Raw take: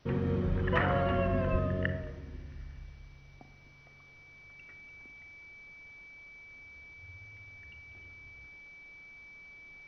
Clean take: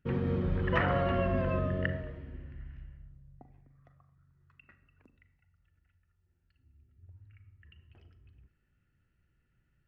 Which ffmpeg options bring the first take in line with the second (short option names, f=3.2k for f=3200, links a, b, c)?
-filter_complex "[0:a]bandreject=f=2.3k:w=30,asplit=3[a][b][c];[a]afade=t=out:st=1.51:d=0.02[d];[b]highpass=f=140:w=0.5412,highpass=f=140:w=1.3066,afade=t=in:st=1.51:d=0.02,afade=t=out:st=1.63:d=0.02[e];[c]afade=t=in:st=1.63:d=0.02[f];[d][e][f]amix=inputs=3:normalize=0,agate=range=-21dB:threshold=-47dB"